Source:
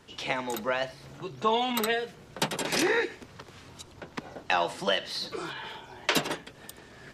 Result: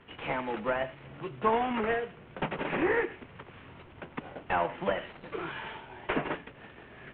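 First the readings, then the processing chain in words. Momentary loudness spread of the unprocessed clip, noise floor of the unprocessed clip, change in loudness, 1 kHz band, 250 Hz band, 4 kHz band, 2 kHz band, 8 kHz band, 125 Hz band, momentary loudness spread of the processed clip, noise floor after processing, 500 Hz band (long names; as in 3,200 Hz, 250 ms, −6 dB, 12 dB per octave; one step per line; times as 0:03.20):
20 LU, −52 dBFS, −3.5 dB, −1.0 dB, −0.5 dB, −14.0 dB, −3.5 dB, below −40 dB, +0.5 dB, 20 LU, −53 dBFS, −1.0 dB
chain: variable-slope delta modulation 16 kbit/s
treble cut that deepens with the level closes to 2,300 Hz, closed at −25.5 dBFS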